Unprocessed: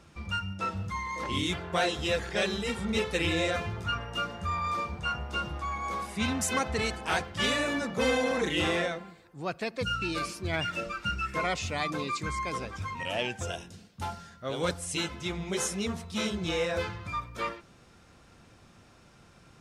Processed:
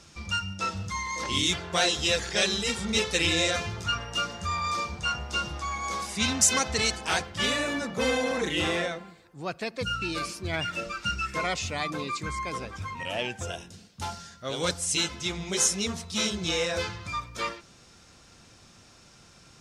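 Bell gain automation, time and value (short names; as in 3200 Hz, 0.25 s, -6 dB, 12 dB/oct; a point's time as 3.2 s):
bell 5900 Hz 1.7 oct
6.9 s +13.5 dB
7.45 s +3.5 dB
10.72 s +3.5 dB
11.09 s +10.5 dB
11.89 s +1.5 dB
13.55 s +1.5 dB
14.14 s +11 dB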